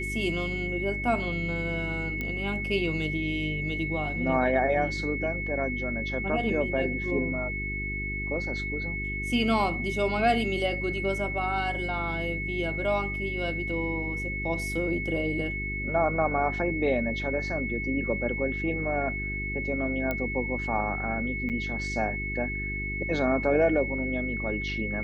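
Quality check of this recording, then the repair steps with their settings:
hum 50 Hz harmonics 8 -35 dBFS
tone 2200 Hz -32 dBFS
2.21 pop -19 dBFS
20.11 pop -16 dBFS
21.49–21.5 gap 8 ms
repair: de-click; de-hum 50 Hz, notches 8; notch 2200 Hz, Q 30; interpolate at 21.49, 8 ms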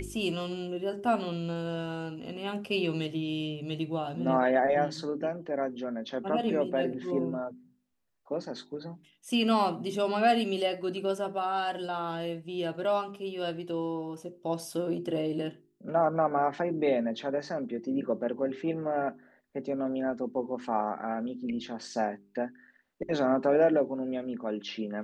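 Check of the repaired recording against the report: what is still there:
none

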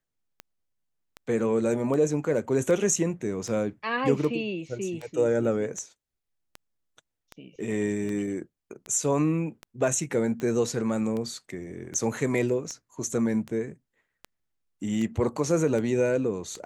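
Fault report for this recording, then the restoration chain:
tick 78 rpm -22 dBFS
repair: de-click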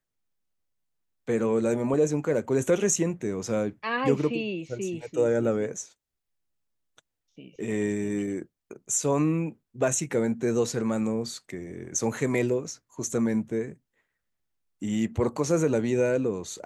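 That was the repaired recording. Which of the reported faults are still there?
none

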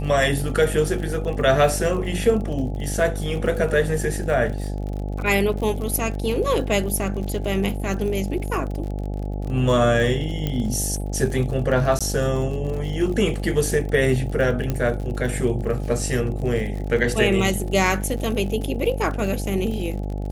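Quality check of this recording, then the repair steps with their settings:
buzz 50 Hz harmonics 17 -27 dBFS
crackle 53/s -30 dBFS
10.47 pop -12 dBFS
11.99–12.01 gap 16 ms
14.7 pop -11 dBFS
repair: de-click; de-hum 50 Hz, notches 17; interpolate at 11.99, 16 ms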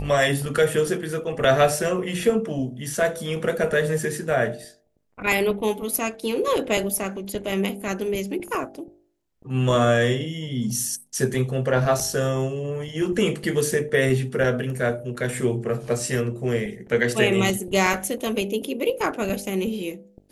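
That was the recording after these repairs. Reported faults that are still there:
14.7 pop

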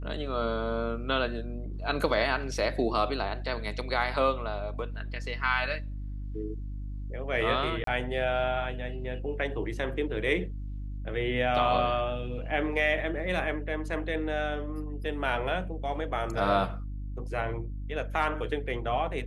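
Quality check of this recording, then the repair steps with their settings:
hum 50 Hz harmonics 6 -36 dBFS
7.84–7.87 gap 33 ms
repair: de-hum 50 Hz, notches 6; interpolate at 7.84, 33 ms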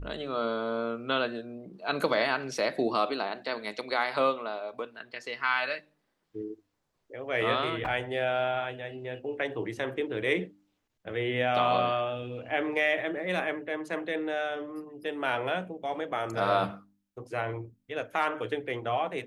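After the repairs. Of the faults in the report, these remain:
none

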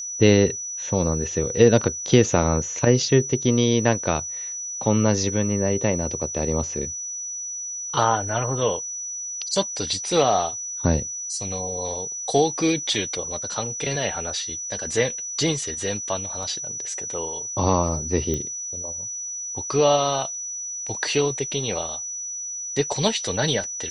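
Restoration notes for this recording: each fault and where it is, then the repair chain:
tone 5900 Hz -29 dBFS
16.43 gap 2.1 ms
18.34 pop -13 dBFS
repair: de-click; notch 5900 Hz, Q 30; interpolate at 16.43, 2.1 ms

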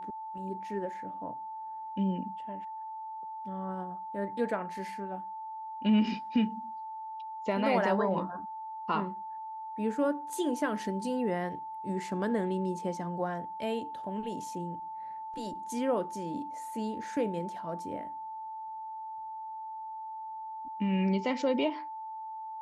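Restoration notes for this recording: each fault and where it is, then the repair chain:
tone 880 Hz -38 dBFS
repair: notch 880 Hz, Q 30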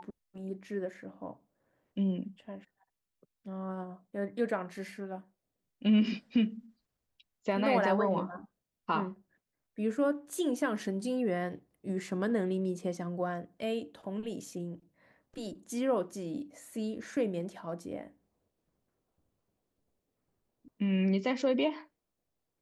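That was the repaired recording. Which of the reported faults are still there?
none

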